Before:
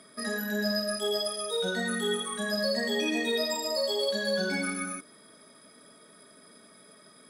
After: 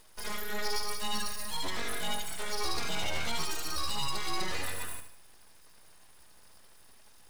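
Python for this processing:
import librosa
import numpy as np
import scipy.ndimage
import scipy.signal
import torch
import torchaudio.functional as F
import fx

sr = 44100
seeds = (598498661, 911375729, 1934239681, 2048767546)

p1 = np.abs(x)
p2 = p1 + fx.echo_feedback(p1, sr, ms=75, feedback_pct=41, wet_db=-9.0, dry=0)
y = p2 * librosa.db_to_amplitude(-2.5)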